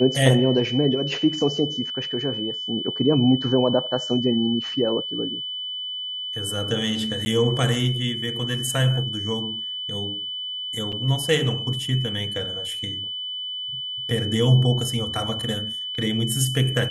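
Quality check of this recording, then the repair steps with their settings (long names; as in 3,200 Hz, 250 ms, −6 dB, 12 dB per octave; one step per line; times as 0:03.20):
whistle 3,000 Hz −28 dBFS
0:07.25–0:07.26: drop-out 10 ms
0:10.92–0:10.93: drop-out 6 ms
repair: notch filter 3,000 Hz, Q 30
repair the gap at 0:07.25, 10 ms
repair the gap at 0:10.92, 6 ms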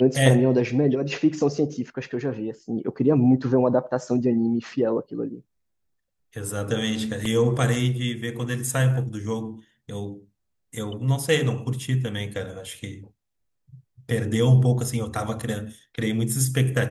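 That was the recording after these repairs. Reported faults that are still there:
none of them is left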